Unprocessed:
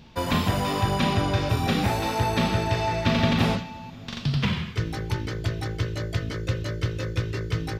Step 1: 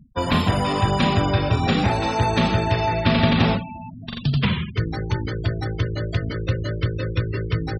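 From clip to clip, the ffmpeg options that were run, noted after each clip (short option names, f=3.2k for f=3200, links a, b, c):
-af "afftfilt=real='re*gte(hypot(re,im),0.0224)':imag='im*gte(hypot(re,im),0.0224)':win_size=1024:overlap=0.75,volume=4dB"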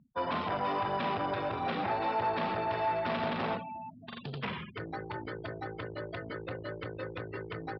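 -af "aresample=11025,asoftclip=type=tanh:threshold=-19.5dB,aresample=44100,bandpass=f=900:t=q:w=0.74:csg=0,volume=-3.5dB"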